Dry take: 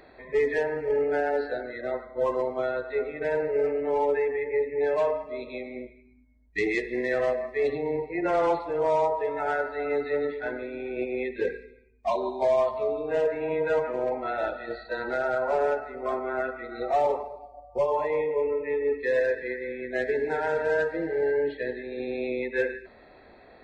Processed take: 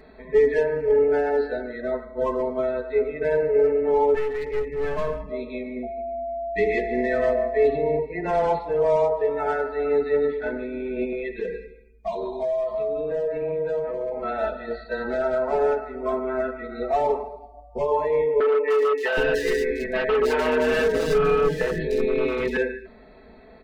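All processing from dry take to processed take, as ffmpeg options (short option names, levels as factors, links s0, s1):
-filter_complex "[0:a]asettb=1/sr,asplit=3[s0][s1][s2];[s0]atrim=end=4.144[s3];[s1]atrim=start=4.14:end=5.32,asetpts=PTS-STARTPTS,afade=t=in:d=0.004:c=qsin,afade=t=out:st=1.176:d=0.004:c=qsin,asubboost=boost=9.5:cutoff=220,aecho=1:1:5.8:0.36,atrim=end_sample=52038,aeval=exprs='clip(val(0),-1,0.0251)':c=same[s4];[s2]atrim=start=5.316[s5];[s3][s4]acrossfade=d=0.004:c1=hsin:c2=qsin[s6];[s6][s5]acrossfade=d=0.004:c1=qsin:c2=hsin,asettb=1/sr,asplit=3[s7][s8][s9];[s7]atrim=end=5.834[s10];[s8]atrim=start=5.83:end=7.99,asetpts=PTS-STARTPTS,afade=t=in:d=0.004:c=qsin,afade=t=out:st=2.156:d=0.004:c=qsin,acrossover=split=3700[s11][s12];[s12]acompressor=threshold=0.00282:ratio=4:attack=1:release=60[s13];[s11][s13]amix=inputs=2:normalize=0,aeval=exprs='val(0)+0.02*sin(2*PI*680*n/s)':c=same,asplit=2[s14][s15];[s15]adelay=144,lowpass=f=1900:p=1,volume=0.282,asplit=2[s16][s17];[s17]adelay=144,lowpass=f=1900:p=1,volume=0.4,asplit=2[s18][s19];[s19]adelay=144,lowpass=f=1900:p=1,volume=0.4,asplit=2[s20][s21];[s21]adelay=144,lowpass=f=1900:p=1,volume=0.4[s22];[s14][s16][s18][s20][s22]amix=inputs=5:normalize=0,atrim=end_sample=95256[s23];[s9]atrim=start=7.986[s24];[s10][s23]acrossfade=d=0.004:c1=hsin:c2=qsin[s25];[s25][s24]acrossfade=d=0.004:c1=qsin:c2=hsin,asettb=1/sr,asplit=3[s26][s27][s28];[s26]atrim=end=11.124[s29];[s27]atrim=start=11.12:end=14.24,asetpts=PTS-STARTPTS,afade=t=in:d=0.004:c=qsin,afade=t=out:st=3.116:d=0.004:c=qsin,aecho=1:1:6.1:0.75,atrim=end_sample=137592,acompressor=threshold=0.0398:ratio=5:attack=3.2:release=140:knee=1:detection=peak[s30];[s28]atrim=start=14.236[s31];[s29][s30]acrossfade=d=0.004:c1=hsin:c2=qsin[s32];[s32][s31]acrossfade=d=0.004:c1=qsin:c2=hsin,asettb=1/sr,asplit=3[s33][s34][s35];[s33]atrim=end=18.404[s36];[s34]atrim=start=18.4:end=22.57,asetpts=PTS-STARTPTS,afade=t=in:d=0.004:c=qsin,afade=t=out:st=4.166:d=0.004:c=qsin,acontrast=80,aeval=exprs='0.126*(abs(mod(val(0)/0.126+3,4)-2)-1)':c=same,acrossover=split=370|3500[s37][s38][s39];[s39]adelay=300[s40];[s37]adelay=770[s41];[s41][s38][s40]amix=inputs=3:normalize=0,atrim=end_sample=183897[s42];[s35]atrim=start=22.566[s43];[s36][s42]acrossfade=d=0.004:c1=hsin:c2=qsin[s44];[s44][s43]acrossfade=d=0.004:c1=qsin:c2=hsin,lowshelf=f=330:g=10,aecho=1:1:4.6:0.77,volume=0.794"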